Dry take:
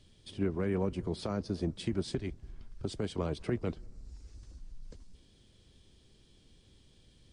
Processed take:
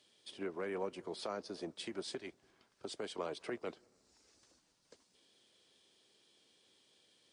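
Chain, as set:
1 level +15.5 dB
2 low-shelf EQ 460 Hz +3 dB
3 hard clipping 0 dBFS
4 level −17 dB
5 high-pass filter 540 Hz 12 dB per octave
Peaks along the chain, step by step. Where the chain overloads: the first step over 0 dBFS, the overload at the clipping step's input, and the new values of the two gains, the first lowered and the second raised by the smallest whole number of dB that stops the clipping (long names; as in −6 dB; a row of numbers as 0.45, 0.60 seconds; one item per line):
−4.5, −2.0, −2.0, −19.0, −26.0 dBFS
no step passes full scale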